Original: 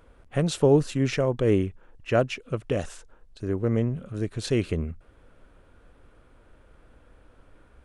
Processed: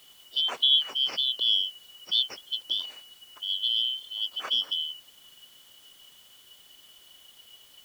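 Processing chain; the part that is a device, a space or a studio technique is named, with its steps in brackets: split-band scrambled radio (four frequency bands reordered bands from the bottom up 3412; band-pass 310–3100 Hz; white noise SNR 27 dB)

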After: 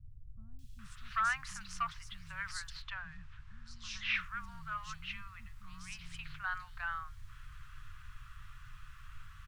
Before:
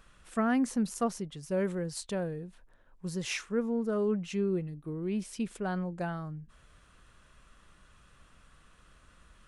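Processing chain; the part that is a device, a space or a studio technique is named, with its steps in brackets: aircraft cabin announcement (band-pass 360–4100 Hz; saturation -22 dBFS, distortion -21 dB; brown noise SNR 14 dB); elliptic band-stop 130–1200 Hz, stop band 80 dB; 2.23–3.56 s: low-pass 4.7 kHz 12 dB/octave; three bands offset in time lows, highs, mids 590/790 ms, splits 310/4000 Hz; trim +6.5 dB

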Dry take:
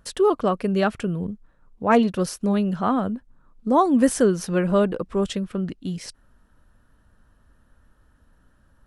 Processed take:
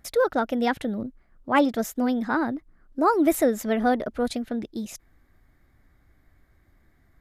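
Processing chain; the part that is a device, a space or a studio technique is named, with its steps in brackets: nightcore (tape speed +23%); trim -2.5 dB

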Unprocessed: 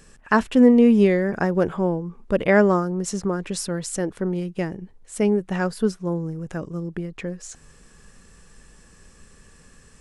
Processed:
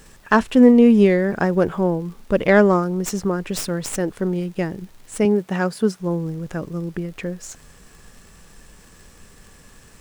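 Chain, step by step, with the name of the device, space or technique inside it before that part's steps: record under a worn stylus (tracing distortion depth 0.05 ms; crackle; pink noise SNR 35 dB); 5.25–6.00 s: high-pass 110 Hz; trim +2.5 dB

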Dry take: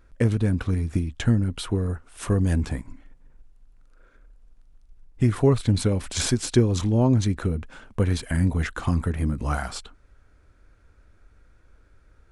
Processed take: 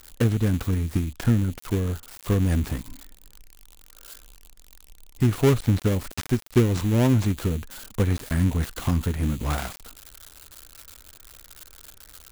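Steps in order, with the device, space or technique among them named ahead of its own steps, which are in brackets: budget class-D amplifier (dead-time distortion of 0.28 ms; zero-crossing glitches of -24 dBFS)

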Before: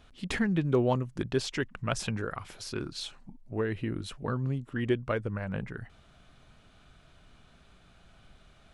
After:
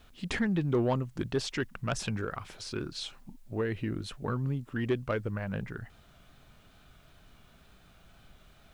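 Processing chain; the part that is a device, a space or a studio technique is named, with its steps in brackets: compact cassette (saturation -19.5 dBFS, distortion -18 dB; low-pass 9.1 kHz; wow and flutter; white noise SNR 39 dB)

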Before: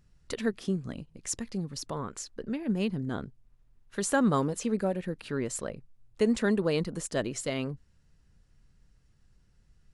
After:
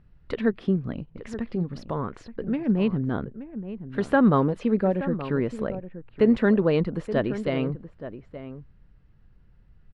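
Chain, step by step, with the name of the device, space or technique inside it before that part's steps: shout across a valley (distance through air 400 m; echo from a far wall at 150 m, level -12 dB); trim +7 dB

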